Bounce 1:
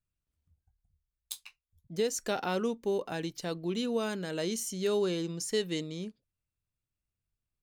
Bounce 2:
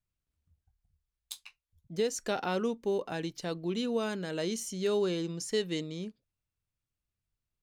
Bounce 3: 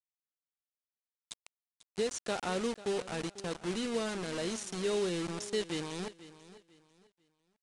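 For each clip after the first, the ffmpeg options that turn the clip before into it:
-af "highshelf=f=11000:g=-10"
-af "acrusher=bits=5:mix=0:aa=0.000001,aecho=1:1:494|988|1482:0.15|0.0434|0.0126,aresample=22050,aresample=44100,volume=0.708"

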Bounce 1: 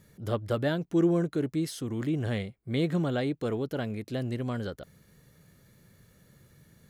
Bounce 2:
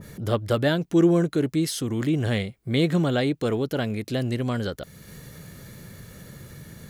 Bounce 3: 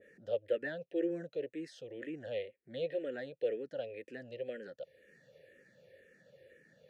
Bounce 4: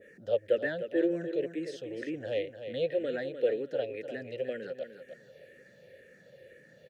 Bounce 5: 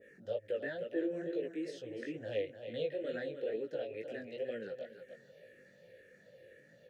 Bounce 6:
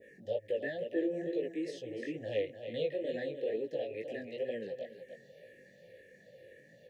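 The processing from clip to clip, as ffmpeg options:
-filter_complex "[0:a]asplit=2[s0][s1];[s1]acompressor=mode=upward:threshold=0.0316:ratio=2.5,volume=0.944[s2];[s0][s2]amix=inputs=2:normalize=0,adynamicequalizer=threshold=0.00708:dfrequency=2000:dqfactor=0.7:tfrequency=2000:tqfactor=0.7:attack=5:release=100:ratio=0.375:range=2:mode=boostabove:tftype=highshelf"
-filter_complex "[0:a]asplit=3[s0][s1][s2];[s0]bandpass=f=530:t=q:w=8,volume=1[s3];[s1]bandpass=f=1840:t=q:w=8,volume=0.501[s4];[s2]bandpass=f=2480:t=q:w=8,volume=0.355[s5];[s3][s4][s5]amix=inputs=3:normalize=0,asplit=2[s6][s7];[s7]afreqshift=-2[s8];[s6][s8]amix=inputs=2:normalize=1"
-af "aecho=1:1:301|602|903:0.335|0.0871|0.0226,volume=2"
-af "alimiter=limit=0.0708:level=0:latency=1:release=136,flanger=delay=17:depth=4.7:speed=2.2,volume=0.841"
-af "asuperstop=centerf=1200:order=20:qfactor=1.5,volume=1.33"

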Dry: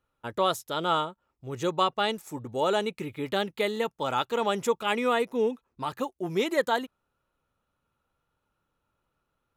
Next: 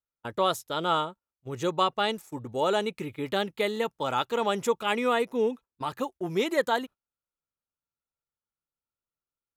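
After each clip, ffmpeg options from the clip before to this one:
-af "agate=range=0.0794:threshold=0.00794:ratio=16:detection=peak"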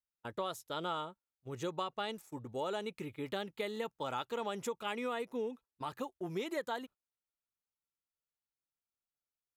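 -af "acompressor=threshold=0.0501:ratio=6,volume=0.422"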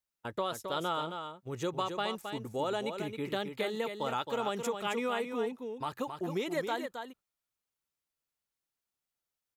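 -af "aecho=1:1:268:0.447,volume=1.58"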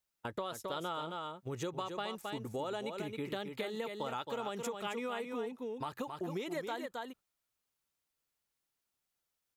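-af "acompressor=threshold=0.00891:ratio=3,volume=1.41"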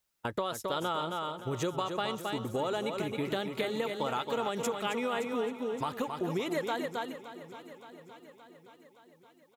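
-af "aecho=1:1:570|1140|1710|2280|2850|3420:0.2|0.12|0.0718|0.0431|0.0259|0.0155,volume=2"

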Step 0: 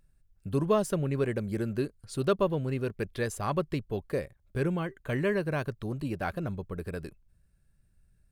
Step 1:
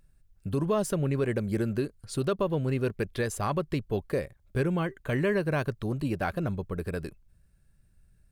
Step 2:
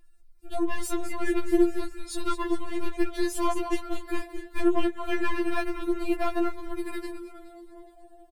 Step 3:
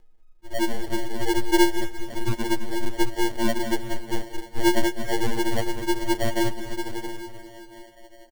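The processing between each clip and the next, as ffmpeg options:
-af "alimiter=limit=0.0841:level=0:latency=1:release=138,volume=1.5"
-filter_complex "[0:a]asplit=9[s0][s1][s2][s3][s4][s5][s6][s7][s8];[s1]adelay=209,afreqshift=-130,volume=0.299[s9];[s2]adelay=418,afreqshift=-260,volume=0.191[s10];[s3]adelay=627,afreqshift=-390,volume=0.122[s11];[s4]adelay=836,afreqshift=-520,volume=0.0785[s12];[s5]adelay=1045,afreqshift=-650,volume=0.0501[s13];[s6]adelay=1254,afreqshift=-780,volume=0.032[s14];[s7]adelay=1463,afreqshift=-910,volume=0.0204[s15];[s8]adelay=1672,afreqshift=-1040,volume=0.0132[s16];[s0][s9][s10][s11][s12][s13][s14][s15][s16]amix=inputs=9:normalize=0,aeval=exprs='(tanh(14.1*val(0)+0.6)-tanh(0.6))/14.1':c=same,afftfilt=real='re*4*eq(mod(b,16),0)':imag='im*4*eq(mod(b,16),0)':win_size=2048:overlap=0.75,volume=2.37"
-af "aresample=16000,aresample=44100,acrusher=samples=35:mix=1:aa=0.000001,aecho=1:1:205|410|615|820|1025|1230:0.158|0.0935|0.0552|0.0326|0.0192|0.0113,volume=1.33"

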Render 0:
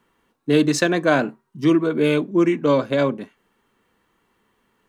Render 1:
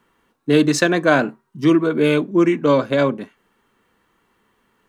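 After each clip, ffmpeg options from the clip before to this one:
-af "equalizer=f=1400:t=o:w=0.77:g=2,volume=1.26"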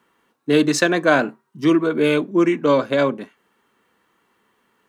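-af "highpass=f=200:p=1"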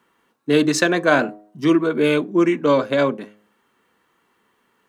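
-af "bandreject=f=104.6:t=h:w=4,bandreject=f=209.2:t=h:w=4,bandreject=f=313.8:t=h:w=4,bandreject=f=418.4:t=h:w=4,bandreject=f=523:t=h:w=4,bandreject=f=627.6:t=h:w=4,bandreject=f=732.2:t=h:w=4"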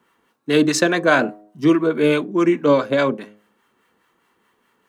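-filter_complex "[0:a]acrossover=split=800[s0][s1];[s0]aeval=exprs='val(0)*(1-0.5/2+0.5/2*cos(2*PI*4.8*n/s))':c=same[s2];[s1]aeval=exprs='val(0)*(1-0.5/2-0.5/2*cos(2*PI*4.8*n/s))':c=same[s3];[s2][s3]amix=inputs=2:normalize=0,volume=1.41"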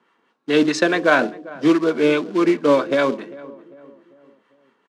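-filter_complex "[0:a]acrusher=bits=4:mode=log:mix=0:aa=0.000001,highpass=200,lowpass=4600,asplit=2[s0][s1];[s1]adelay=397,lowpass=f=1100:p=1,volume=0.126,asplit=2[s2][s3];[s3]adelay=397,lowpass=f=1100:p=1,volume=0.48,asplit=2[s4][s5];[s5]adelay=397,lowpass=f=1100:p=1,volume=0.48,asplit=2[s6][s7];[s7]adelay=397,lowpass=f=1100:p=1,volume=0.48[s8];[s0][s2][s4][s6][s8]amix=inputs=5:normalize=0"

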